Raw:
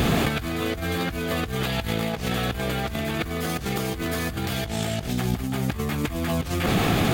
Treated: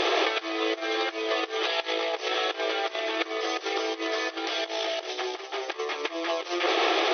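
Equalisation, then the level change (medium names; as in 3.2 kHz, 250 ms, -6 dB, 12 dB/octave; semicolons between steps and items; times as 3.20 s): brick-wall FIR band-pass 320–6200 Hz; peaking EQ 3.3 kHz +2.5 dB 0.25 oct; band-stop 1.5 kHz, Q 10; +1.5 dB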